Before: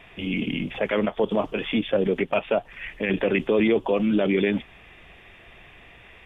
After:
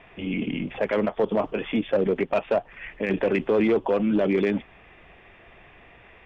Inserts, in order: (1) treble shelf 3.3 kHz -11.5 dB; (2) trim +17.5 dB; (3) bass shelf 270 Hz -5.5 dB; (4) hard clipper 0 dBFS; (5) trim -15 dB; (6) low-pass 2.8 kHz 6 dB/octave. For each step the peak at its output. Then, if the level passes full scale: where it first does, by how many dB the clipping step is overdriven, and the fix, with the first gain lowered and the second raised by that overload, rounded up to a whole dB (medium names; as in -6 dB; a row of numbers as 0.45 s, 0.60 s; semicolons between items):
-10.5 dBFS, +7.0 dBFS, +6.0 dBFS, 0.0 dBFS, -15.0 dBFS, -15.0 dBFS; step 2, 6.0 dB; step 2 +11.5 dB, step 5 -9 dB